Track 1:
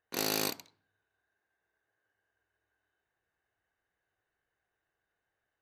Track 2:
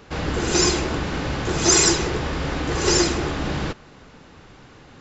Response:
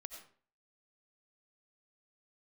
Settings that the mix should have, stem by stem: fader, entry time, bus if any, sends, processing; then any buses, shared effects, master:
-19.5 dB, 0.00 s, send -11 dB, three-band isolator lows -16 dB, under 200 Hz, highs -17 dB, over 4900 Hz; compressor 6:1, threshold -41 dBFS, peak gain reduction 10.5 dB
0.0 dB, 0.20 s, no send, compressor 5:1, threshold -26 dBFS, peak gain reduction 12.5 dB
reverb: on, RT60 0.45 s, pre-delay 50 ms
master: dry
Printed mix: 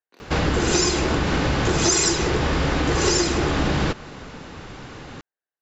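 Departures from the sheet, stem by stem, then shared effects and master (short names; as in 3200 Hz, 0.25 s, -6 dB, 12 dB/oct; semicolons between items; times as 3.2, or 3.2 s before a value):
stem 1 -19.5 dB -> -12.5 dB; stem 2 0.0 dB -> +8.5 dB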